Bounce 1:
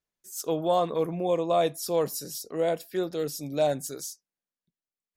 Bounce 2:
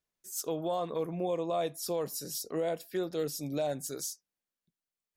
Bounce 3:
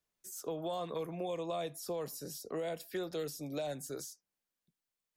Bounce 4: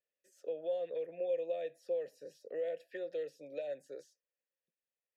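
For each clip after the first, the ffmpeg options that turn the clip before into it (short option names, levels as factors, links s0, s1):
-af "alimiter=limit=0.0708:level=0:latency=1:release=402"
-filter_complex "[0:a]acrossover=split=160|390|1600[s0][s1][s2][s3];[s0]acompressor=threshold=0.00251:ratio=4[s4];[s1]acompressor=threshold=0.00355:ratio=4[s5];[s2]acompressor=threshold=0.0112:ratio=4[s6];[s3]acompressor=threshold=0.00447:ratio=4[s7];[s4][s5][s6][s7]amix=inputs=4:normalize=0,volume=1.12"
-filter_complex "[0:a]asplit=3[s0][s1][s2];[s0]bandpass=f=530:t=q:w=8,volume=1[s3];[s1]bandpass=f=1840:t=q:w=8,volume=0.501[s4];[s2]bandpass=f=2480:t=q:w=8,volume=0.355[s5];[s3][s4][s5]amix=inputs=3:normalize=0,volume=2"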